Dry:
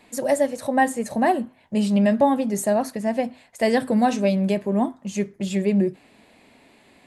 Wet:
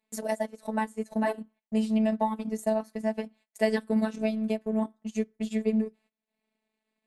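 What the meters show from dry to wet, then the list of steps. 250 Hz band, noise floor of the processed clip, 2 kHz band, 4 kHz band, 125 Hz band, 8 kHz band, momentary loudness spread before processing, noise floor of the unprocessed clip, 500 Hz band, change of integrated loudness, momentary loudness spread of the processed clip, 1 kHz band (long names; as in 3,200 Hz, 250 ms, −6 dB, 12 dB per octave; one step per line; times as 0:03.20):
−6.5 dB, below −85 dBFS, −9.0 dB, −8.5 dB, below −10 dB, −12.0 dB, 7 LU, −56 dBFS, −7.5 dB, −7.5 dB, 7 LU, −10.5 dB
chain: transient designer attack +4 dB, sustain −12 dB
phases set to zero 218 Hz
noise gate −50 dBFS, range −20 dB
level −6.5 dB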